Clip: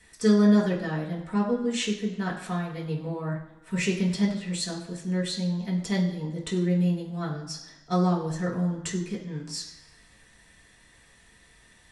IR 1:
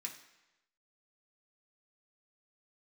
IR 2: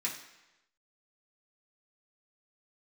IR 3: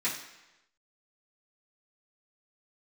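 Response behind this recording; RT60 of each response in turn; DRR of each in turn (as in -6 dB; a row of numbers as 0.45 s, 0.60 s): 2; 1.0 s, 1.0 s, 1.0 s; -1.0 dB, -6.0 dB, -12.0 dB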